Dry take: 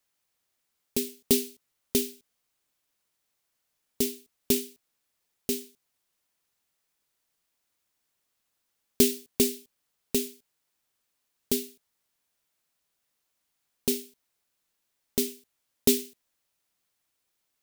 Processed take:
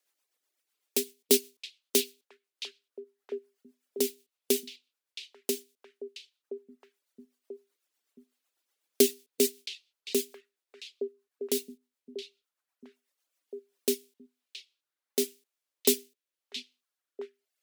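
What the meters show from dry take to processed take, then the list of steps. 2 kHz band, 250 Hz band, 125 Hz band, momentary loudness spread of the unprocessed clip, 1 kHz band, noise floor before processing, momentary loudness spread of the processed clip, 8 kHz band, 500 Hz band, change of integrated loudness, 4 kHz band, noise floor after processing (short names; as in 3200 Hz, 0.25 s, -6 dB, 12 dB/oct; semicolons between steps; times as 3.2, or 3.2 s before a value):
+0.5 dB, -4.5 dB, under -15 dB, 15 LU, n/a, -79 dBFS, 22 LU, -0.5 dB, +1.5 dB, -2.5 dB, +0.5 dB, under -85 dBFS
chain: HPF 300 Hz 24 dB/oct; reverb removal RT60 1.6 s; rotary speaker horn 8 Hz, later 0.85 Hz, at 13.14; on a send: delay with a stepping band-pass 0.67 s, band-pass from 3100 Hz, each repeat -1.4 oct, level -4 dB; on the sum: gain +3.5 dB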